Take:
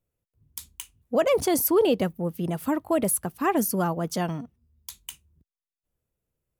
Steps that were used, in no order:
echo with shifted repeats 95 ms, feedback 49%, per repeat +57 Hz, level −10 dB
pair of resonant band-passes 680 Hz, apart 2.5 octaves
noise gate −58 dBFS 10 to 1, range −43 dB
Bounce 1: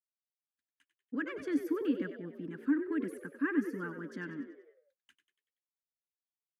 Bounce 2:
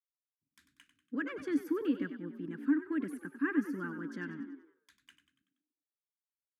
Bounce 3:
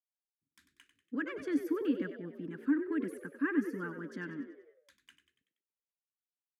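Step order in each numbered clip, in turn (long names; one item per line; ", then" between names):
pair of resonant band-passes, then noise gate, then echo with shifted repeats
noise gate, then echo with shifted repeats, then pair of resonant band-passes
noise gate, then pair of resonant band-passes, then echo with shifted repeats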